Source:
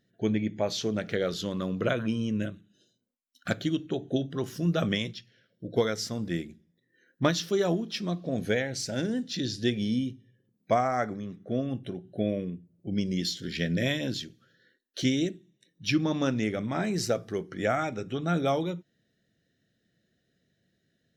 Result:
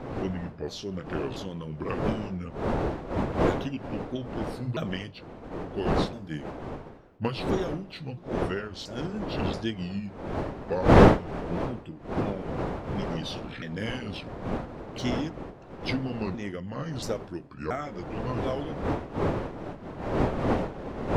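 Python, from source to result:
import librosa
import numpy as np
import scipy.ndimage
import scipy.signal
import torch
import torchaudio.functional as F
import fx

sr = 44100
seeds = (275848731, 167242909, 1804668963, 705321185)

y = fx.pitch_ramps(x, sr, semitones=-6.0, every_ms=681)
y = fx.dmg_wind(y, sr, seeds[0], corner_hz=540.0, level_db=-26.0)
y = y * 10.0 ** (-4.0 / 20.0)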